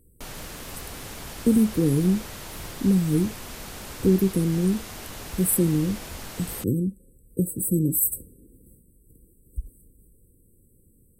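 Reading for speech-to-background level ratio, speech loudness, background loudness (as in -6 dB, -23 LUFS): 14.0 dB, -24.0 LUFS, -38.0 LUFS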